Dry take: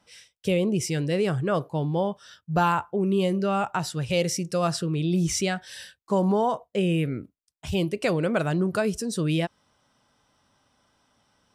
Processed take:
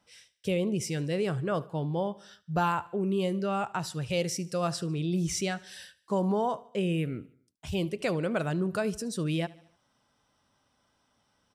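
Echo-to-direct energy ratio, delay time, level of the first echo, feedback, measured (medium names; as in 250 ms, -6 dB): -20.0 dB, 74 ms, -21.5 dB, 52%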